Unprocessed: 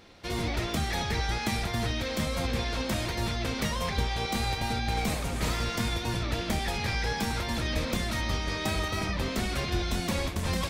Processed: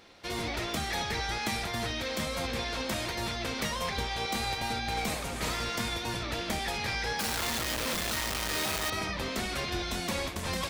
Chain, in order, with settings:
0:07.19–0:08.90: sign of each sample alone
low-shelf EQ 240 Hz −9 dB

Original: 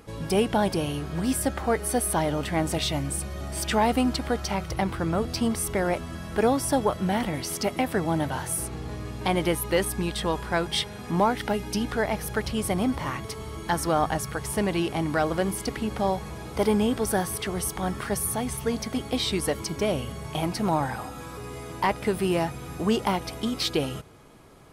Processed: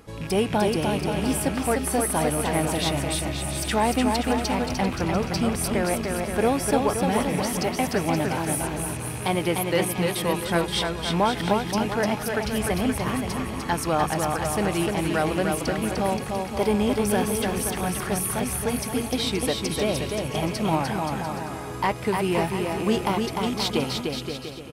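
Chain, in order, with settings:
loose part that buzzes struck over −32 dBFS, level −29 dBFS
on a send: bouncing-ball delay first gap 300 ms, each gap 0.75×, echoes 5

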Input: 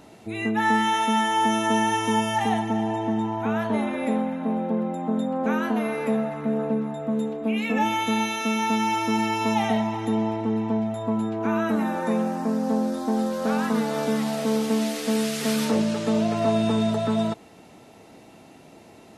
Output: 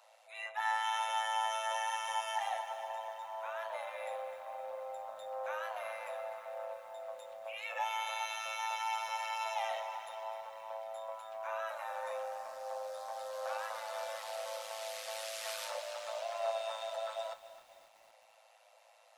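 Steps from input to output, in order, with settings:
amplitude modulation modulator 110 Hz, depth 50%
Chebyshev high-pass filter 510 Hz, order 10
feedback echo at a low word length 261 ms, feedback 55%, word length 8 bits, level −13.5 dB
level −7.5 dB

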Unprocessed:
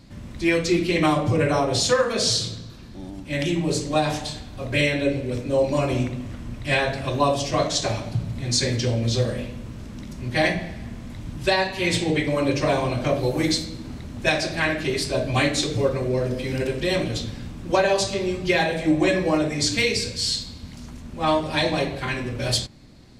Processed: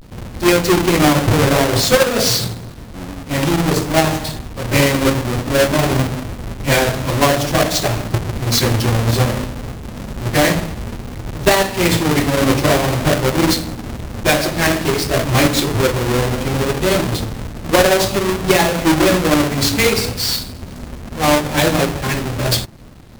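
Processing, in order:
each half-wave held at its own peak
log-companded quantiser 4 bits
pitch vibrato 0.55 Hz 77 cents
level +2.5 dB

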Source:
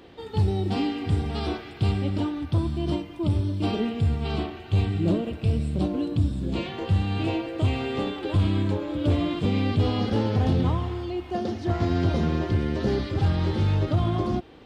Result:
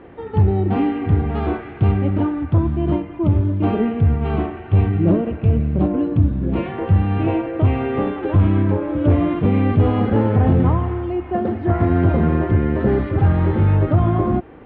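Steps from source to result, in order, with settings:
low-pass filter 2,100 Hz 24 dB per octave
level +7.5 dB

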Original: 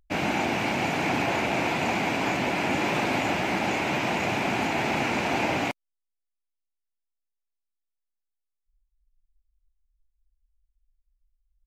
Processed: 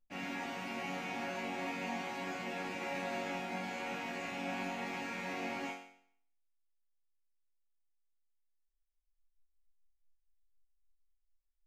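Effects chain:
parametric band 1,800 Hz +3 dB 0.21 octaves
resonators tuned to a chord F#3 major, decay 0.61 s
level +6 dB

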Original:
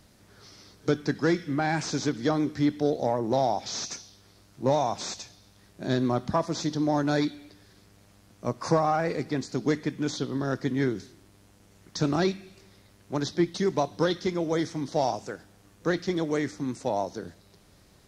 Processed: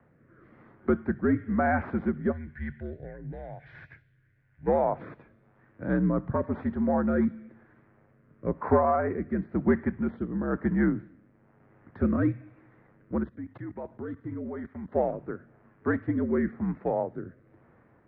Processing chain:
0:02.32–0:04.67: gain on a spectral selection 230–1,500 Hz −17 dB
0:13.23–0:14.92: output level in coarse steps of 18 dB
rotating-speaker cabinet horn 1 Hz
single-sideband voice off tune −71 Hz 170–2,000 Hz
level +3 dB

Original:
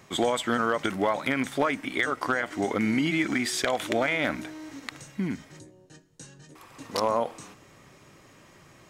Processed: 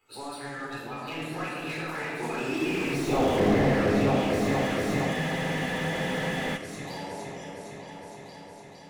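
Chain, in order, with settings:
spectral magnitudes quantised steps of 30 dB
source passing by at 0:03.21, 52 m/s, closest 6.7 metres
high-shelf EQ 3,100 Hz +9 dB
in parallel at +0.5 dB: downward compressor 6 to 1, threshold −45 dBFS, peak gain reduction 21 dB
on the sum: soft clipping −14 dBFS, distortion −22 dB
flanger swept by the level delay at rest 11.8 ms, full sweep at −25.5 dBFS
on a send: echo whose low-pass opens from repeat to repeat 461 ms, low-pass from 750 Hz, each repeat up 2 octaves, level −3 dB
on the sum: rectangular room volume 1,200 cubic metres, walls mixed, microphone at 4 metres
frozen spectrum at 0:05.16, 1.41 s
slew-rate limiting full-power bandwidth 35 Hz
level +4 dB

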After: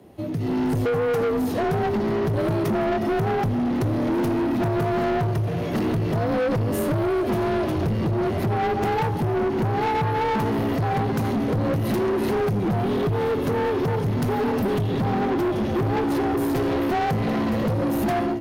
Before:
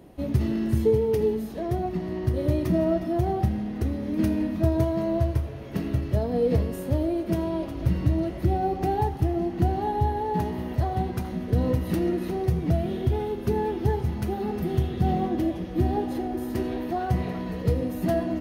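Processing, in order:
downward compressor 6 to 1, threshold −26 dBFS, peak gain reduction 10 dB
frequency shifter +34 Hz
automatic gain control gain up to 15.5 dB
soft clipping −20 dBFS, distortion −8 dB

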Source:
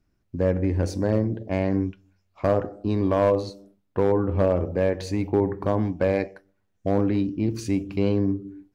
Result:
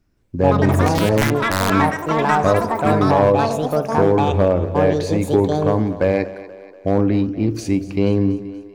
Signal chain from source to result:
echo with a time of its own for lows and highs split 300 Hz, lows 98 ms, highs 240 ms, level −15.5 dB
0:01.21–0:01.70: wrap-around overflow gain 15 dB
delay with pitch and tempo change per echo 167 ms, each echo +7 semitones, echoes 3
level +5 dB

